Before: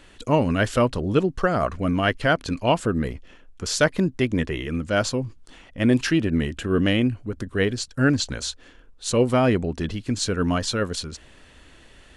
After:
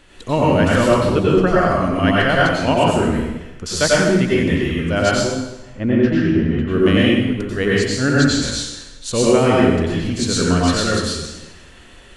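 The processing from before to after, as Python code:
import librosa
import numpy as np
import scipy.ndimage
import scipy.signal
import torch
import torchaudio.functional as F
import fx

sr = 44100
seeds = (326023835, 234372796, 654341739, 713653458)

y = fx.spacing_loss(x, sr, db_at_10k=34, at=(5.11, 6.68))
y = fx.rev_plate(y, sr, seeds[0], rt60_s=1.0, hf_ratio=0.95, predelay_ms=80, drr_db=-6.0)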